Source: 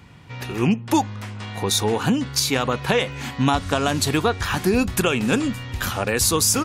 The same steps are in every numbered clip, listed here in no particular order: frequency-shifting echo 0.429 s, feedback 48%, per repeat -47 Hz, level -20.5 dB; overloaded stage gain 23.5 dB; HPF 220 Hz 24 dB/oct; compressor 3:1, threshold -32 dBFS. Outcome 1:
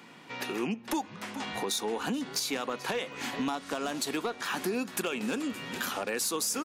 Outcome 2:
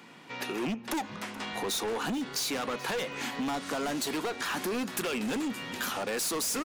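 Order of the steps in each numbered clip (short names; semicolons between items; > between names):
HPF > frequency-shifting echo > compressor > overloaded stage; HPF > overloaded stage > frequency-shifting echo > compressor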